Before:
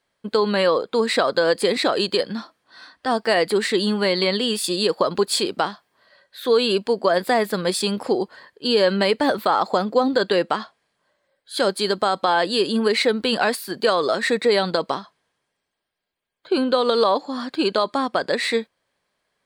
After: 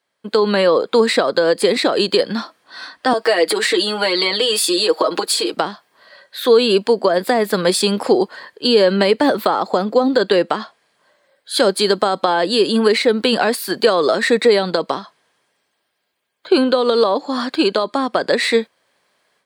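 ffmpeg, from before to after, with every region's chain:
-filter_complex "[0:a]asettb=1/sr,asplit=3[a][b][c];[a]atrim=end=3.134[d];[b]atrim=start=3.13:end=5.54,asetpts=PTS-STARTPTS,afade=t=in:d=0.004:c=qsin,afade=t=out:st=2.406:d=0.004:c=qsin,acompressor=threshold=-25dB:ratio=2:attack=3.2:release=140:knee=1:detection=peak,highpass=f=270:w=0.5412,highpass=f=270:w=1.3066,aecho=1:1:6.3:0.84,atrim=end_sample=106281[e];[c]atrim=start=5.536[f];[d][e]acrossfade=d=0.004:c1=hsin:c2=qsin[g];[g][f]acrossfade=d=0.004:c1=qsin:c2=hsin,acrossover=split=490[h][i];[i]acompressor=threshold=-25dB:ratio=6[j];[h][j]amix=inputs=2:normalize=0,highpass=f=250:p=1,dynaudnorm=f=190:g=3:m=11dB"

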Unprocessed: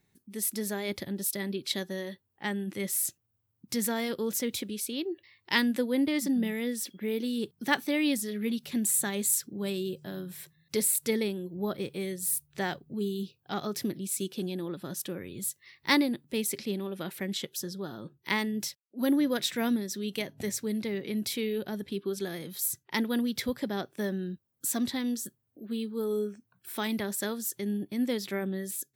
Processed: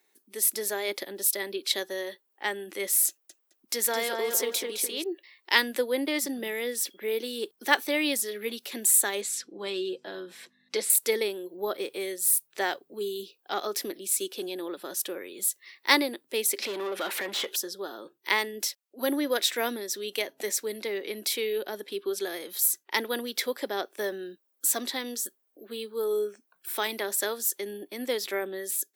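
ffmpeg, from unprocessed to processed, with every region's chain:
-filter_complex "[0:a]asettb=1/sr,asplit=3[a][b][c];[a]atrim=end=3.084[d];[b]atrim=start=3.08:end=5.04,asetpts=PTS-STARTPTS,afade=t=in:d=0.004:c=qsin,afade=t=out:st=1.956:d=0.004:c=qsin,lowshelf=f=260:g=-4.5,asplit=2[e][f];[f]adelay=213,lowpass=f=3.2k:p=1,volume=-3.5dB,asplit=2[g][h];[h]adelay=213,lowpass=f=3.2k:p=1,volume=0.35,asplit=2[i][j];[j]adelay=213,lowpass=f=3.2k:p=1,volume=0.35,asplit=2[k][l];[l]adelay=213,lowpass=f=3.2k:p=1,volume=0.35,asplit=2[m][n];[n]adelay=213,lowpass=f=3.2k:p=1,volume=0.35[o];[e][g][i][k][m][o]amix=inputs=6:normalize=0,atrim=end_sample=86436[p];[c]atrim=start=5.036[q];[d][p]acrossfade=d=0.004:c1=hsin:c2=qsin[r];[r][q]acrossfade=d=0.004:c1=qsin:c2=hsin,asettb=1/sr,asplit=3[s][t][u];[s]atrim=end=9.214[v];[t]atrim=start=9.21:end=10.9,asetpts=PTS-STARTPTS,afade=t=in:d=0.004:c=qsin,afade=t=out:st=1.686:d=0.004:c=qsin,lowpass=5k,aecho=1:1:6:0.46,atrim=end_sample=74529,aeval=exprs='val(0)+0.00398*(sin(2*PI*50*n/s)+sin(2*PI*2*50*n/s)/2+sin(2*PI*3*50*n/s)/3+sin(2*PI*4*50*n/s)/4+sin(2*PI*5*50*n/s)/5)':c=same[w];[u]atrim=start=10.896[x];[v][w]acrossfade=d=0.004:c1=hsin:c2=qsin[y];[y][x]acrossfade=d=0.004:c1=qsin:c2=hsin,asettb=1/sr,asplit=3[z][aa][ab];[z]atrim=end=16.624[ac];[aa]atrim=start=16.62:end=17.56,asetpts=PTS-STARTPTS,afade=t=in:d=0.004:c=qsin,afade=t=out:st=0.936:d=0.004:c=qsin,asplit=2[ad][ae];[ae]highpass=f=720:p=1,volume=24dB,asoftclip=type=tanh:threshold=-21dB[af];[ad][af]amix=inputs=2:normalize=0,lowpass=f=2.8k:p=1,volume=-6dB,equalizer=f=210:w=5:g=5.5,acompressor=threshold=-31dB:ratio=4:attack=3.2:release=140:knee=1:detection=peak[ag];[ab]atrim=start=17.556[ah];[ac][ag]acrossfade=d=0.004:c1=hsin:c2=qsin[ai];[ai][ah]acrossfade=d=0.004:c1=qsin:c2=hsin,highpass=f=360:w=0.5412,highpass=f=360:w=1.3066,highshelf=f=10k:g=3.5,volume=4.5dB"

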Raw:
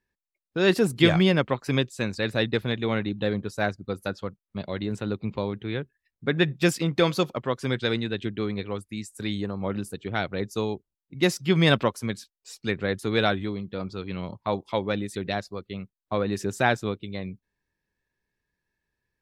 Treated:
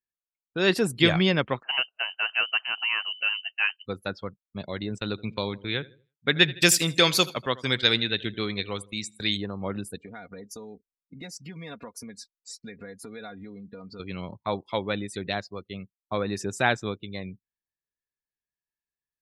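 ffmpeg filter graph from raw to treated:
-filter_complex "[0:a]asettb=1/sr,asplit=3[a][b][c];[a]atrim=end=1.634[d];[b]atrim=start=1.63:end=3.86,asetpts=PTS-STARTPTS,afade=t=in:d=0.004:c=qsin,afade=t=out:st=2.226:d=0.004:c=qsin,highpass=330,lowpass=f=2.7k:t=q:w=0.5098,lowpass=f=2.7k:t=q:w=0.6013,lowpass=f=2.7k:t=q:w=0.9,lowpass=f=2.7k:t=q:w=2.563,afreqshift=-3200[e];[c]atrim=start=3.856[f];[d][e]acrossfade=d=0.004:c1=hsin:c2=qsin[g];[g][f]acrossfade=d=0.004:c1=qsin:c2=hsin,asettb=1/sr,asplit=3[h][i][j];[h]atrim=end=4.984[k];[i]atrim=start=4.98:end=9.37,asetpts=PTS-STARTPTS,afade=t=in:d=0.004:c=qsin,afade=t=out:st=4.386:d=0.004:c=qsin,agate=range=-17dB:threshold=-40dB:ratio=16:release=100:detection=peak,highshelf=f=2.3k:g=11.5,aecho=1:1:80|160|240|320:0.1|0.052|0.027|0.0141,atrim=end_sample=193599[l];[j]atrim=start=9.366[m];[k][l]acrossfade=d=0.004:c1=hsin:c2=qsin[n];[n][m]acrossfade=d=0.004:c1=qsin:c2=hsin,asettb=1/sr,asplit=3[o][p][q];[o]atrim=end=9.964[r];[p]atrim=start=9.96:end=14,asetpts=PTS-STARTPTS,afade=t=in:d=0.004:c=qsin,afade=t=out:st=4.036:d=0.004:c=qsin,equalizer=f=3.1k:t=o:w=0.36:g=-12,aecho=1:1:4.2:0.67,atrim=end_sample=178164,acompressor=threshold=-36dB:ratio=6:attack=3.2:release=140:knee=1:detection=peak[s];[q]atrim=start=13.996[t];[r][s]acrossfade=d=0.004:c1=hsin:c2=qsin[u];[u][t]acrossfade=d=0.004:c1=qsin:c2=hsin,afftdn=nr=19:nf=-47,tiltshelf=f=1.4k:g=-3"

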